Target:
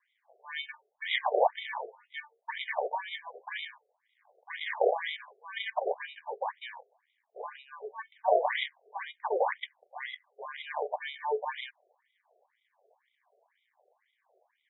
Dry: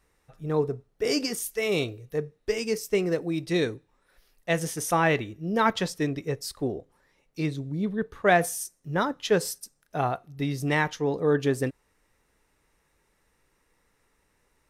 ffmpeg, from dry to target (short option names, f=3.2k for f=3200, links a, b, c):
-af "highshelf=f=3.4k:t=q:w=1.5:g=14,acrusher=samples=33:mix=1:aa=0.000001,afftfilt=real='re*between(b*sr/1024,530*pow(2800/530,0.5+0.5*sin(2*PI*2*pts/sr))/1.41,530*pow(2800/530,0.5+0.5*sin(2*PI*2*pts/sr))*1.41)':imag='im*between(b*sr/1024,530*pow(2800/530,0.5+0.5*sin(2*PI*2*pts/sr))/1.41,530*pow(2800/530,0.5+0.5*sin(2*PI*2*pts/sr))*1.41)':win_size=1024:overlap=0.75,volume=-1.5dB"